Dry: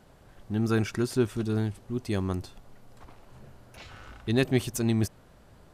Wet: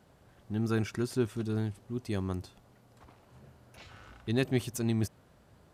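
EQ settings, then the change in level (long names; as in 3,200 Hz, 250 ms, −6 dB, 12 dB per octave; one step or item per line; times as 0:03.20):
high-pass filter 65 Hz
low-shelf EQ 150 Hz +2.5 dB
−5.0 dB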